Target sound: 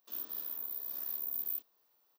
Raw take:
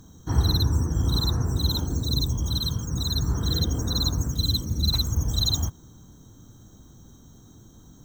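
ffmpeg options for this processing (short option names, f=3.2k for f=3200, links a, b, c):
-af "aderivative,aecho=1:1:183.7|279.9:1|0.631,asetrate=162288,aresample=44100,volume=-5dB"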